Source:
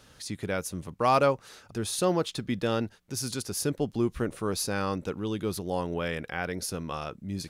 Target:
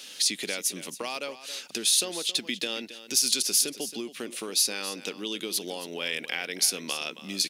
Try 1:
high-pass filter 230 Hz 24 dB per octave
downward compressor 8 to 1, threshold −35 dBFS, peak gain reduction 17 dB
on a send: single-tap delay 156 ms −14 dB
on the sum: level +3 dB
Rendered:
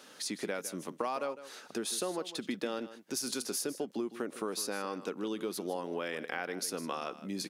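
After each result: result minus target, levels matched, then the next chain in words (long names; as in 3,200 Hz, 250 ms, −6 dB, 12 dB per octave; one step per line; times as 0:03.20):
echo 116 ms early; 4,000 Hz band −5.0 dB
high-pass filter 230 Hz 24 dB per octave
downward compressor 8 to 1, threshold −35 dBFS, peak gain reduction 17 dB
on a send: single-tap delay 272 ms −14 dB
on the sum: level +3 dB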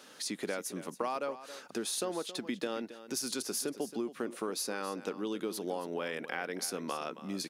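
4,000 Hz band −5.0 dB
high-pass filter 230 Hz 24 dB per octave
downward compressor 8 to 1, threshold −35 dBFS, peak gain reduction 17 dB
high shelf with overshoot 1,900 Hz +12.5 dB, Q 1.5
on a send: single-tap delay 272 ms −14 dB
on the sum: level +3 dB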